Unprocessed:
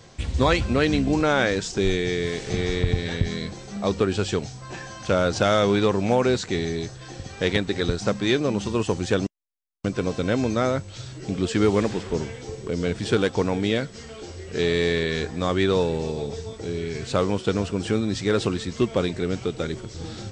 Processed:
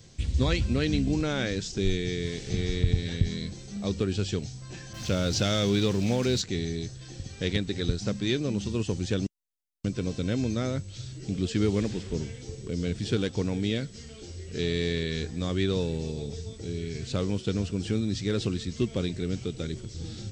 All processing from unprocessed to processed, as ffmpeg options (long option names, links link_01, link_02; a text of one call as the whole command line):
ffmpeg -i in.wav -filter_complex "[0:a]asettb=1/sr,asplit=3[link_01][link_02][link_03];[link_01]atrim=end=4.934[link_04];[link_02]atrim=start=4.93:end=6.42,asetpts=PTS-STARTPTS,afade=type=in:duration=0.004:curve=qsin,afade=type=out:start_time=1.486:duration=0.004:curve=qsin,aeval=exprs='val(0)+0.5*0.0282*sgn(val(0))':channel_layout=same,adynamicequalizer=threshold=0.0178:dfrequency=2700:dqfactor=0.7:tfrequency=2700:tqfactor=0.7:attack=5:release=100:ratio=0.375:range=2.5:mode=boostabove:tftype=highshelf[link_05];[link_03]atrim=start=6.416[link_06];[link_04][link_05]acrossfade=duration=0.004:curve1=hsin:curve2=qsin[link_07];[link_07][link_06]acrossfade=duration=0.004:curve1=qsin:curve2=hsin,acrossover=split=7000[link_08][link_09];[link_09]acompressor=threshold=-56dB:ratio=4:attack=1:release=60[link_10];[link_08][link_10]amix=inputs=2:normalize=0,equalizer=frequency=950:width_type=o:width=2.5:gain=-15" out.wav